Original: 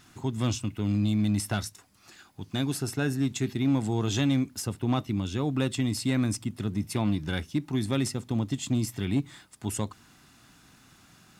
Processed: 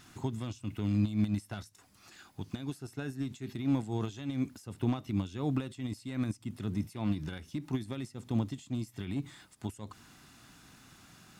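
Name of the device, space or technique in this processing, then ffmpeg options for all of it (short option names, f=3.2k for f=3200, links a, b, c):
de-esser from a sidechain: -filter_complex "[0:a]asplit=2[a][b];[b]highpass=4.5k,apad=whole_len=502472[c];[a][c]sidechaincompress=threshold=-55dB:ratio=5:attack=2.8:release=92"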